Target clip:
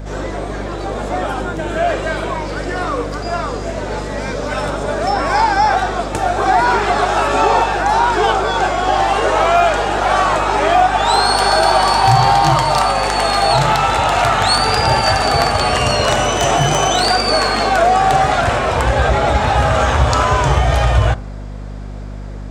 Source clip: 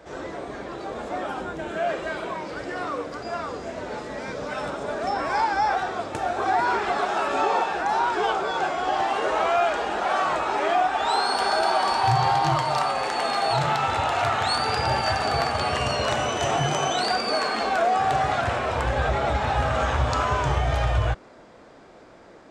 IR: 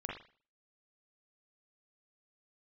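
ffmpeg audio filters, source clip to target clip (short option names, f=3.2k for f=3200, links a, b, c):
-filter_complex "[0:a]asplit=2[a][b];[1:a]atrim=start_sample=2205,asetrate=37926,aresample=44100,lowpass=1.2k[c];[b][c]afir=irnorm=-1:irlink=0,volume=-16.5dB[d];[a][d]amix=inputs=2:normalize=0,crystalizer=i=1:c=0,asettb=1/sr,asplit=3[e][f][g];[e]atrim=end=16.174[h];[f]atrim=start=16.17:end=17.08,asetpts=PTS-STARTPTS,afade=t=in:d=0.004:c=qsin,afade=t=out:st=0.906:d=0.004:c=qsin,aeval=exprs='0.2*(abs(mod(val(0)/0.2+3,4)-2)-1)':c=same[i];[g]atrim=start=17.076[j];[h][i]acrossfade=d=0.004:c1=hsin:c2=qsin[k];[k][j]acrossfade=d=0.004:c1=qsin:c2=hsin,aeval=exprs='val(0)+0.0178*(sin(2*PI*50*n/s)+sin(2*PI*2*50*n/s)/2+sin(2*PI*3*50*n/s)/3+sin(2*PI*4*50*n/s)/4+sin(2*PI*5*50*n/s)/5)':c=same,volume=8.5dB"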